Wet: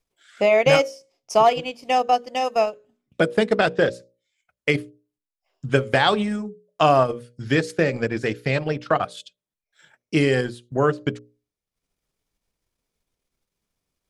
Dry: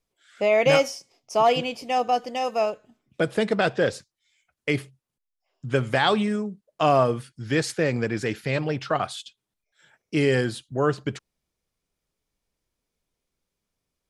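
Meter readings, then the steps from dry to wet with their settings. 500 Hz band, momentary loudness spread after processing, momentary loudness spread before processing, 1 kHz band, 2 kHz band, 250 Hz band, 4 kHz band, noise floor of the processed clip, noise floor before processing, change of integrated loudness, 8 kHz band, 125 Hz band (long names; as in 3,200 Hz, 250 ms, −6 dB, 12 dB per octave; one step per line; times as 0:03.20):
+2.5 dB, 11 LU, 12 LU, +3.5 dB, +3.0 dB, +2.0 dB, +2.0 dB, below −85 dBFS, −83 dBFS, +2.5 dB, −1.0 dB, +2.0 dB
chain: transient designer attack +4 dB, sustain −10 dB
mains-hum notches 60/120/180/240/300/360/420/480/540/600 Hz
level +2 dB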